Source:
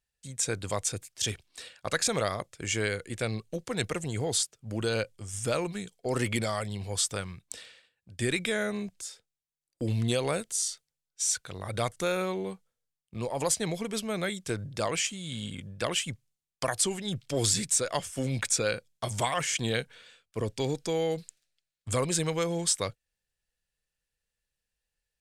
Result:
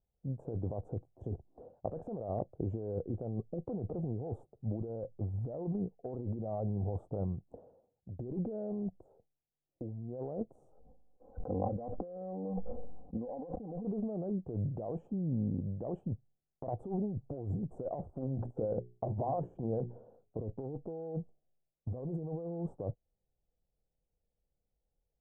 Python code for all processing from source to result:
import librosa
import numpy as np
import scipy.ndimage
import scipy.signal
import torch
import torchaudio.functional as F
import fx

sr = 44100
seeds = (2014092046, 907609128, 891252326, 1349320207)

y = fx.chain(x, sr, fx.lowpass(hz=1600.0, slope=12),
    fx.comb(ms=3.9, depth=0.91),
    fx.sustainer(db_per_s=24.0), at=(10.72, 13.85))
y = fx.chain(y, sr, fx.hum_notches(base_hz=60, count=7),
    fx.over_compress(threshold_db=-34.0, ratio=-1.0), at=(18.21, 20.39))
y = scipy.signal.sosfilt(scipy.signal.ellip(4, 1.0, 60, 770.0, 'lowpass', fs=sr, output='sos'), y)
y = fx.over_compress(y, sr, threshold_db=-38.0, ratio=-1.0)
y = y * 10.0 ** (1.0 / 20.0)